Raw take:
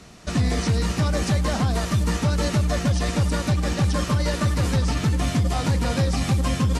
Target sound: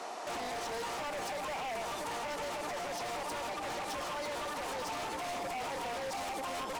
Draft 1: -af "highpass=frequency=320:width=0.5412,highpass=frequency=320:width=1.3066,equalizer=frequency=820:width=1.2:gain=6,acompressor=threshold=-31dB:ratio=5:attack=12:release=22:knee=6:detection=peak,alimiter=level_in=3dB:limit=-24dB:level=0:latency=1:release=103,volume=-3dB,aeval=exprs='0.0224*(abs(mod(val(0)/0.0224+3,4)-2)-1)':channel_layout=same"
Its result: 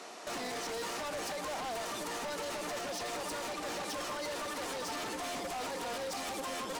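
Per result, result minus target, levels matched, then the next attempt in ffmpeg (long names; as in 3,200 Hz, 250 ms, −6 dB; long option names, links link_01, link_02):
downward compressor: peak gain reduction +9 dB; 1,000 Hz band −2.5 dB
-af "highpass=frequency=320:width=0.5412,highpass=frequency=320:width=1.3066,equalizer=frequency=820:width=1.2:gain=6,alimiter=level_in=3dB:limit=-24dB:level=0:latency=1:release=103,volume=-3dB,aeval=exprs='0.0224*(abs(mod(val(0)/0.0224+3,4)-2)-1)':channel_layout=same"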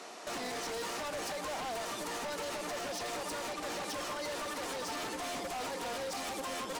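1,000 Hz band −2.5 dB
-af "highpass=frequency=320:width=0.5412,highpass=frequency=320:width=1.3066,equalizer=frequency=820:width=1.2:gain=16,alimiter=level_in=3dB:limit=-24dB:level=0:latency=1:release=103,volume=-3dB,aeval=exprs='0.0224*(abs(mod(val(0)/0.0224+3,4)-2)-1)':channel_layout=same"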